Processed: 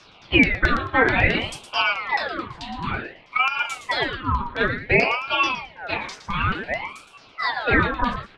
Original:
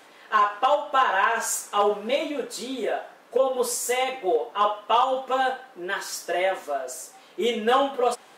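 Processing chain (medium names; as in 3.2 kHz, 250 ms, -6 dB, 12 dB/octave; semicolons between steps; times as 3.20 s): LFO low-pass saw down 4.6 Hz 870–4500 Hz; on a send: delay 115 ms -9.5 dB; on the sum: ring modulator with a swept carrier 1.2 kHz, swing 60%, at 0.56 Hz; trim +1.5 dB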